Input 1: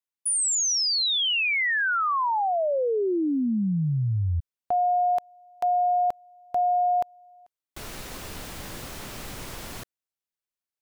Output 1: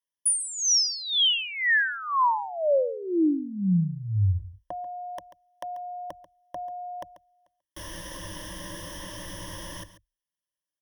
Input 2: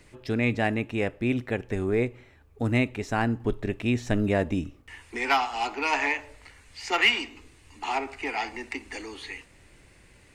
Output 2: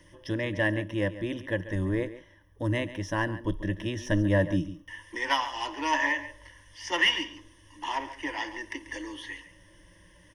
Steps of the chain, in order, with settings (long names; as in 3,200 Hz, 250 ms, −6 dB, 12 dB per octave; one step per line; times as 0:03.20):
EQ curve with evenly spaced ripples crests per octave 1.2, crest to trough 18 dB
single-tap delay 139 ms −14.5 dB
level −4.5 dB